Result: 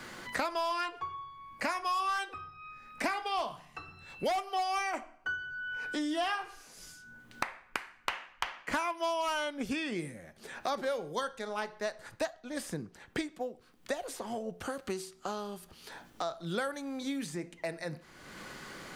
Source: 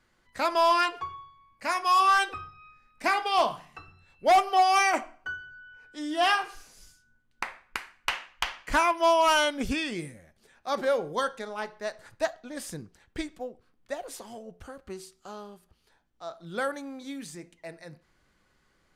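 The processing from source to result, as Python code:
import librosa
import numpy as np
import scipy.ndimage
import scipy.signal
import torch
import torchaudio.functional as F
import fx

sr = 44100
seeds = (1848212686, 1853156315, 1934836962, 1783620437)

y = fx.band_squash(x, sr, depth_pct=100)
y = y * librosa.db_to_amplitude(-6.5)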